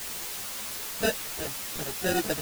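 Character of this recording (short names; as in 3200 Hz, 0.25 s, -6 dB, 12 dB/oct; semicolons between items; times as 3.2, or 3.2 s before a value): aliases and images of a low sample rate 1100 Hz, jitter 0%; random-step tremolo 4.1 Hz, depth 65%; a quantiser's noise floor 6-bit, dither triangular; a shimmering, thickened sound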